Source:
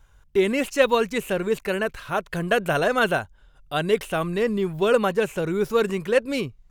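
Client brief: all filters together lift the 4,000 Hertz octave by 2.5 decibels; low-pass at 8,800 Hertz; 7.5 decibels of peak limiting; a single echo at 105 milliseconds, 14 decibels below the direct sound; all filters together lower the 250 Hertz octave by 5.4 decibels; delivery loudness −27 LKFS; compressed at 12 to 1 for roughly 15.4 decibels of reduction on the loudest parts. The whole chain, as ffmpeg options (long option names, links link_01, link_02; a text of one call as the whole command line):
ffmpeg -i in.wav -af "lowpass=8800,equalizer=frequency=250:width_type=o:gain=-8,equalizer=frequency=4000:width_type=o:gain=3.5,acompressor=threshold=-30dB:ratio=12,alimiter=level_in=2dB:limit=-24dB:level=0:latency=1,volume=-2dB,aecho=1:1:105:0.2,volume=9.5dB" out.wav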